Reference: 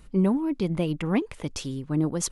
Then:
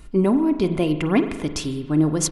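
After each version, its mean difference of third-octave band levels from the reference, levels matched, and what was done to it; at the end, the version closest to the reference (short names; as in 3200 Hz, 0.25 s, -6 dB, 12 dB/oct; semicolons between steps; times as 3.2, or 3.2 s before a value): 3.5 dB: comb 2.9 ms, depth 35%; spring tank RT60 1.2 s, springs 39 ms, chirp 25 ms, DRR 8.5 dB; gain +5.5 dB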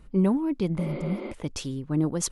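2.0 dB: spectral repair 0.82–1.3, 210–5000 Hz before; mismatched tape noise reduction decoder only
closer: second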